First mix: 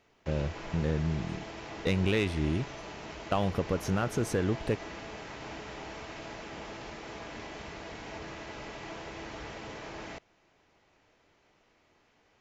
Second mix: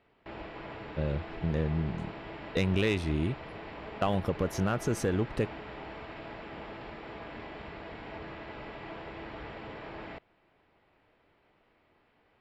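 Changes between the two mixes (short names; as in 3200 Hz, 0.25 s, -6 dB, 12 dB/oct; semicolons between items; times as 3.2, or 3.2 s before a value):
speech: entry +0.70 s; background: add running mean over 7 samples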